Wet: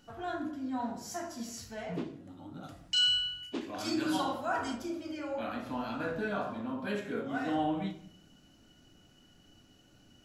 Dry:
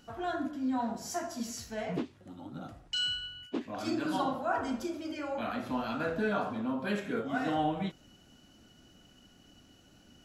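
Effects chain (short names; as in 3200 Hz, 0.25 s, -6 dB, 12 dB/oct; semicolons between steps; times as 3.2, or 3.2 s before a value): 2.63–4.75 high shelf 2200 Hz +9.5 dB; shoebox room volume 72 m³, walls mixed, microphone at 0.38 m; gain -3.5 dB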